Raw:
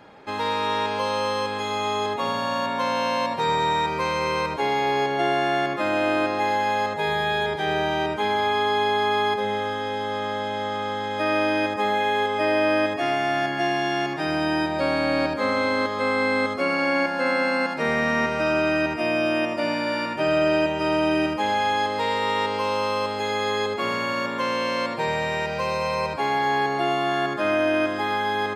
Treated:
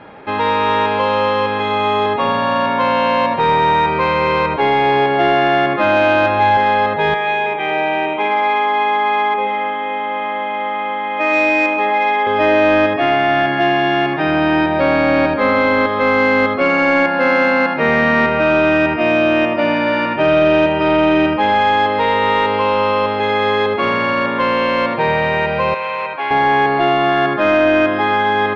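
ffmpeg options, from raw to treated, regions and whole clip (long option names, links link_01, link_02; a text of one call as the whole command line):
ffmpeg -i in.wav -filter_complex "[0:a]asettb=1/sr,asplit=3[link_01][link_02][link_03];[link_01]atrim=end=5.784[link_04];[link_02]atrim=start=5.78:end=6.57,asetpts=PTS-STARTPTS,afade=type=in:duration=0.004:curve=qsin,afade=type=out:start_time=0.786:duration=0.004:curve=qsin,asubboost=boost=12:cutoff=110,asplit=2[link_05][link_06];[link_06]adelay=18,volume=-5.5dB[link_07];[link_05][link_07]amix=inputs=2:normalize=0,atrim=end_sample=34839[link_08];[link_03]atrim=start=6.566[link_09];[link_04][link_08]acrossfade=duration=0.004:curve1=hsin:curve2=qsin[link_10];[link_10][link_09]acrossfade=duration=0.004:curve1=qsin:curve2=hsin,asettb=1/sr,asplit=3[link_11][link_12][link_13];[link_11]atrim=end=7.144[link_14];[link_12]atrim=start=7.14:end=12.27,asetpts=PTS-STARTPTS,afade=type=in:duration=0.004:curve=qsin,afade=type=out:start_time=5.126:duration=0.004:curve=qsin,highpass=380,equalizer=frequency=410:width_type=q:width=4:gain=-4,equalizer=frequency=730:width_type=q:width=4:gain=-6,equalizer=frequency=1500:width_type=q:width=4:gain=-9,equalizer=frequency=2400:width_type=q:width=4:gain=5,lowpass=frequency=2900:width=0.5412,lowpass=frequency=2900:width=1.3066,aecho=1:1:129:0.422,atrim=end_sample=226233[link_15];[link_13]atrim=start=12.266[link_16];[link_14][link_15]acrossfade=duration=0.004:curve1=hsin:curve2=qsin[link_17];[link_17][link_16]acrossfade=duration=0.004:curve1=qsin:curve2=hsin,asettb=1/sr,asplit=3[link_18][link_19][link_20];[link_18]atrim=end=25.744[link_21];[link_19]atrim=start=25.74:end=26.31,asetpts=PTS-STARTPTS,afade=type=in:duration=0.004:curve=qsin,afade=type=out:start_time=0.566:duration=0.004:curve=qsin,equalizer=frequency=5400:width=2.1:gain=-12,asoftclip=type=hard:threshold=-21dB,highpass=frequency=1300:poles=1[link_22];[link_20]atrim=start=26.306[link_23];[link_21][link_22]acrossfade=duration=0.004:curve1=hsin:curve2=qsin[link_24];[link_24][link_23]acrossfade=duration=0.004:curve1=qsin:curve2=hsin,acontrast=40,lowpass=frequency=3200:width=0.5412,lowpass=frequency=3200:width=1.3066,acontrast=63,volume=-2dB" out.wav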